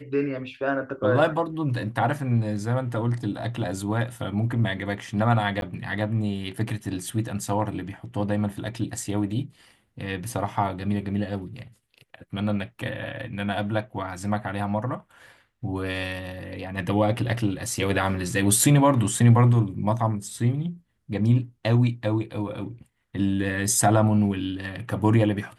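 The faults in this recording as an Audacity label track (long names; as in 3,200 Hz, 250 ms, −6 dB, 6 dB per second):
5.610000	5.620000	drop-out 12 ms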